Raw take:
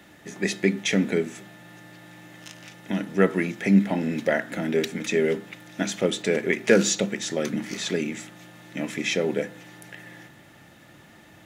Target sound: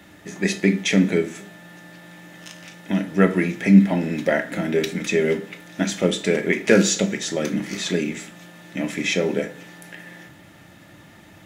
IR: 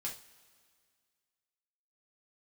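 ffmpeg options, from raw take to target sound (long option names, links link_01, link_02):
-filter_complex "[0:a]asplit=2[link_01][link_02];[1:a]atrim=start_sample=2205,afade=type=out:start_time=0.32:duration=0.01,atrim=end_sample=14553,lowshelf=frequency=180:gain=7[link_03];[link_02][link_03]afir=irnorm=-1:irlink=0,volume=-2dB[link_04];[link_01][link_04]amix=inputs=2:normalize=0,volume=-1dB"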